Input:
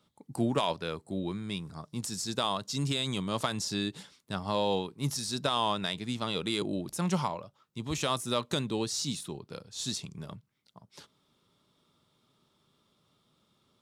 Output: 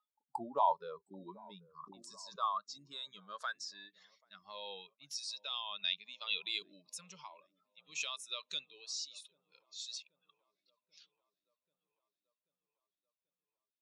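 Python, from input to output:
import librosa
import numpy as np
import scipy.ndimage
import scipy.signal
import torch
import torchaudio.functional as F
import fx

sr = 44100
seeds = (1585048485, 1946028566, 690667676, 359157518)

y = fx.spec_expand(x, sr, power=1.6)
y = fx.high_shelf_res(y, sr, hz=3500.0, db=12.0, q=1.5)
y = fx.rider(y, sr, range_db=5, speed_s=0.5)
y = fx.noise_reduce_blind(y, sr, reduce_db=28)
y = fx.echo_wet_lowpass(y, sr, ms=786, feedback_pct=65, hz=770.0, wet_db=-21)
y = fx.filter_sweep_bandpass(y, sr, from_hz=870.0, to_hz=2500.0, start_s=1.47, end_s=4.9, q=6.9)
y = fx.sustainer(y, sr, db_per_s=60.0, at=(1.78, 2.42))
y = y * librosa.db_to_amplitude(5.5)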